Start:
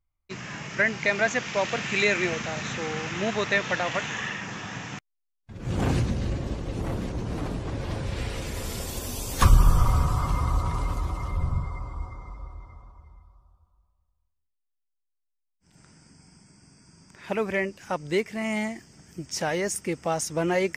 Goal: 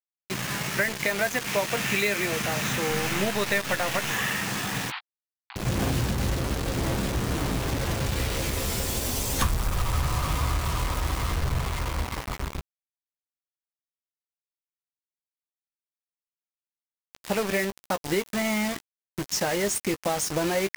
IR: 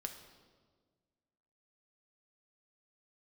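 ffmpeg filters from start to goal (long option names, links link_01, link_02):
-filter_complex "[0:a]acompressor=threshold=-29dB:ratio=4,asettb=1/sr,asplit=3[link_01][link_02][link_03];[link_01]atrim=end=2.904[link_04];[link_02]atrim=start=2.9:end=4.12,asetpts=PTS-STARTPTS,afade=type=in:duration=0.004:curve=qsin,afade=type=out:start_time=1.216:duration=0.004:curve=qsin,aeval=exprs='0.1*(cos(1*acos(clip(val(0)/0.1,-1,1)))-cos(1*PI/2))+0.00794*(cos(6*acos(clip(val(0)/0.1,-1,1)))-cos(6*PI/2))':channel_layout=same[link_05];[link_03]atrim=start=4.116[link_06];[link_04][link_05]acrossfade=duration=0.004:curve1=hsin:curve2=qsin[link_07];[link_07][link_06]acrossfade=duration=0.004:curve1=qsin:curve2=hsin,acrusher=bits=5:mix=0:aa=0.000001,asettb=1/sr,asplit=3[link_08][link_09][link_10];[link_08]atrim=end=4.904[link_11];[link_09]atrim=start=4.9:end=5.56,asetpts=PTS-STARTPTS,afade=type=in:duration=0.004:curve=qsin,afade=type=out:start_time=0.656:duration=0.004:curve=qsin,asuperpass=centerf=1900:order=20:qfactor=0.51[link_12];[link_10]atrim=start=5.556[link_13];[link_11][link_12]acrossfade=duration=0.004:curve1=hsin:curve2=qsin[link_14];[link_14][link_13]acrossfade=duration=0.004:curve1=qsin:curve2=hsin,asplit=2[link_15][link_16];[link_16]adelay=15,volume=-10.5dB[link_17];[link_15][link_17]amix=inputs=2:normalize=0,volume=5dB"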